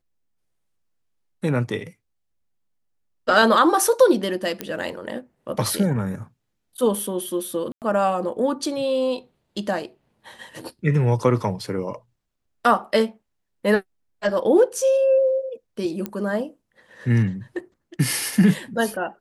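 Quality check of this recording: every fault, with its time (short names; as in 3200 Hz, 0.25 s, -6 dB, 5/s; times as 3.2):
4.61 pop -11 dBFS
7.72–7.82 gap 98 ms
16.06 pop -13 dBFS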